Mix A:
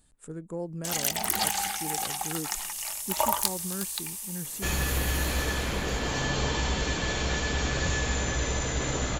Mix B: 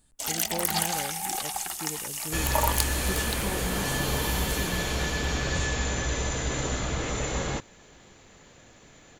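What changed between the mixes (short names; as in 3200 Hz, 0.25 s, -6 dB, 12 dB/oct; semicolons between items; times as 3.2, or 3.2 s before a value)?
first sound: entry -0.65 s; second sound: entry -2.30 s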